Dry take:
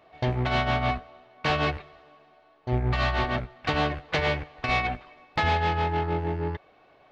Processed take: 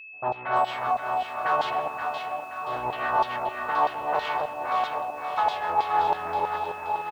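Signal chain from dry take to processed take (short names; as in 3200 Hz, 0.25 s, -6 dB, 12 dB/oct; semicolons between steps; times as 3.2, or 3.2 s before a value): low shelf 66 Hz -7 dB; sample leveller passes 3; LFO band-pass saw down 3.1 Hz 770–4000 Hz; EQ curve 230 Hz 0 dB, 950 Hz +4 dB, 2200 Hz -12 dB, 3300 Hz -7 dB; echo 1.153 s -10.5 dB; low-pass opened by the level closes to 340 Hz, open at -23 dBFS; whine 2600 Hz -43 dBFS; vocal rider within 5 dB 2 s; on a send: echo with dull and thin repeats by turns 0.263 s, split 880 Hz, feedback 67%, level -3.5 dB; on the sum: lo-fi delay 0.563 s, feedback 35%, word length 8-bit, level -10.5 dB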